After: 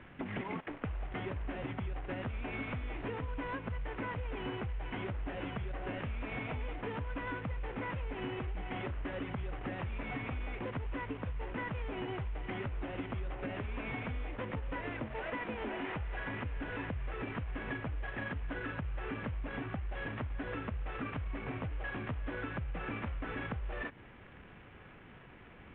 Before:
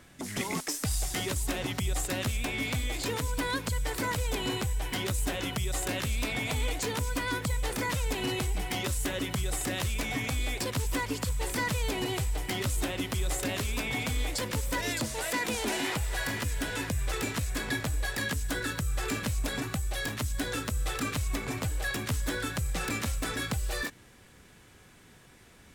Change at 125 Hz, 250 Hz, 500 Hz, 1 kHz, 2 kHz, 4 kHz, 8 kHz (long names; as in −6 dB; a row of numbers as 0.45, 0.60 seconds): −7.0 dB, −6.0 dB, −6.0 dB, −6.0 dB, −8.0 dB, −17.5 dB, below −40 dB